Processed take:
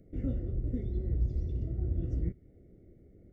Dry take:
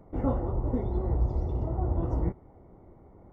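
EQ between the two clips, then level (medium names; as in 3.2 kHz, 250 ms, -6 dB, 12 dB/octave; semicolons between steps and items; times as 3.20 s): dynamic bell 510 Hz, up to -6 dB, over -45 dBFS, Q 0.79; Butterworth band-stop 970 Hz, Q 0.64; -3.0 dB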